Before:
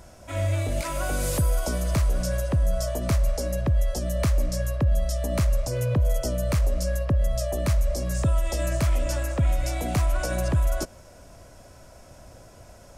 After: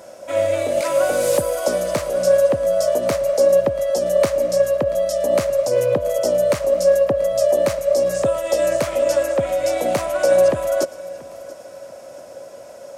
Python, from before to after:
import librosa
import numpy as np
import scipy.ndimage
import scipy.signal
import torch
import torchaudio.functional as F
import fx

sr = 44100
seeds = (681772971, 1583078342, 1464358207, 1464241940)

y = scipy.signal.sosfilt(scipy.signal.butter(2, 260.0, 'highpass', fs=sr, output='sos'), x)
y = fx.peak_eq(y, sr, hz=550.0, db=14.5, octaves=0.34)
y = fx.echo_feedback(y, sr, ms=684, feedback_pct=39, wet_db=-20.0)
y = fx.doppler_dist(y, sr, depth_ms=0.11)
y = y * librosa.db_to_amplitude(5.5)